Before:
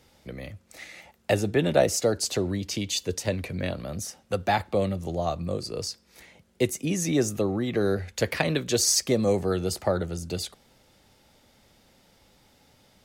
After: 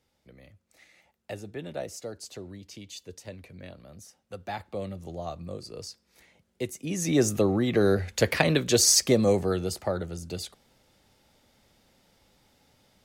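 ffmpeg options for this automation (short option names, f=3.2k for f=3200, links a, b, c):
-af "volume=2.5dB,afade=t=in:st=4.2:d=0.83:silence=0.473151,afade=t=in:st=6.81:d=0.47:silence=0.298538,afade=t=out:st=9.06:d=0.74:silence=0.473151"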